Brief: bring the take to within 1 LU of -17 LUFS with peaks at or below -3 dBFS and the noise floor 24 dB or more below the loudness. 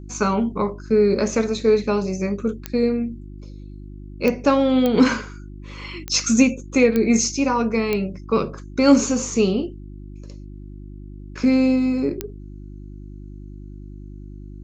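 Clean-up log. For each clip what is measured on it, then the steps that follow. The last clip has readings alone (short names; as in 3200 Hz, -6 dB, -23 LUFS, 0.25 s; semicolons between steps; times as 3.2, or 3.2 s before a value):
clicks 7; hum 50 Hz; harmonics up to 350 Hz; hum level -35 dBFS; loudness -20.0 LUFS; peak -2.5 dBFS; loudness target -17.0 LUFS
-> de-click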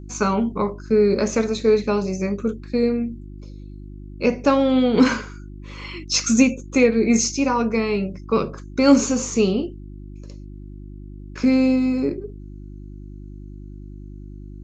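clicks 0; hum 50 Hz; harmonics up to 350 Hz; hum level -35 dBFS
-> de-hum 50 Hz, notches 7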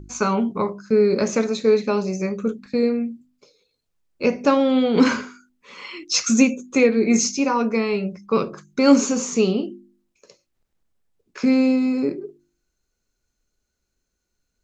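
hum none; loudness -20.5 LUFS; peak -2.5 dBFS; loudness target -17.0 LUFS
-> gain +3.5 dB; limiter -3 dBFS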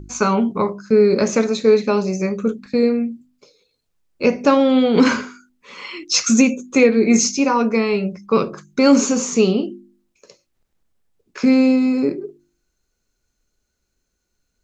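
loudness -17.0 LUFS; peak -3.0 dBFS; noise floor -74 dBFS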